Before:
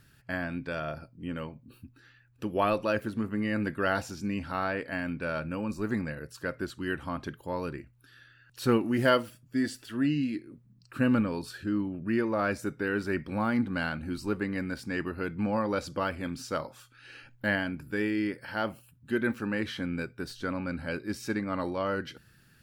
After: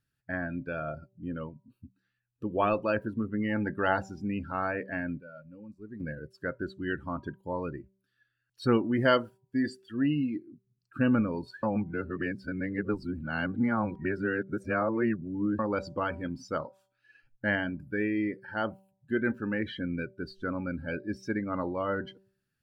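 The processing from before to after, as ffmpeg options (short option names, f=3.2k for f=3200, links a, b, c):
-filter_complex "[0:a]asettb=1/sr,asplit=3[a][b][c];[a]atrim=end=3.494[d];[b]atrim=start=3.49:end=3.96,asetpts=PTS-STARTPTS,afade=t=in:d=0.004:c=qsin,afade=t=out:st=0.466:d=0.004:c=qsin,equalizer=f=830:t=o:w=0.21:g=11.5[e];[c]atrim=start=3.956[f];[d][e]acrossfade=d=0.004:c1=hsin:c2=qsin[g];[g][f]acrossfade=d=0.004:c1=qsin:c2=hsin,asplit=5[h][i][j][k][l];[h]atrim=end=5.2,asetpts=PTS-STARTPTS,afade=t=out:st=5:d=0.2:c=log:silence=0.237137[m];[i]atrim=start=5.2:end=6,asetpts=PTS-STARTPTS,volume=-12.5dB[n];[j]atrim=start=6:end=11.632,asetpts=PTS-STARTPTS,afade=t=in:d=0.2:c=log:silence=0.237137[o];[k]atrim=start=11.628:end=15.592,asetpts=PTS-STARTPTS,areverse[p];[l]atrim=start=15.588[q];[m][n][o]concat=n=3:v=0:a=1[r];[r][p]acrossfade=d=0.004:c1=hsin:c2=hsin[s];[s][q]acrossfade=d=0.004:c1=hsin:c2=hsin,afftdn=nr=22:nf=-38,bandreject=f=192.6:t=h:w=4,bandreject=f=385.2:t=h:w=4,bandreject=f=577.8:t=h:w=4,bandreject=f=770.4:t=h:w=4,bandreject=f=963:t=h:w=4"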